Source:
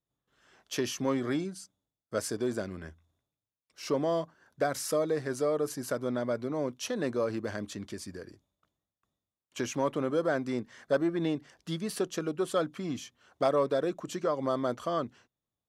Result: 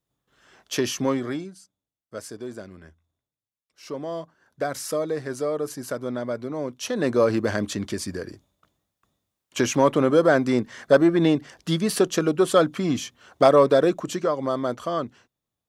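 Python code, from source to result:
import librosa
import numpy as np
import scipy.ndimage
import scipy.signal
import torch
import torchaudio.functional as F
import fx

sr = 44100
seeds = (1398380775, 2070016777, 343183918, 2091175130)

y = fx.gain(x, sr, db=fx.line((1.04, 7.0), (1.59, -4.0), (3.9, -4.0), (4.72, 2.5), (6.7, 2.5), (7.22, 11.0), (13.87, 11.0), (14.41, 4.5)))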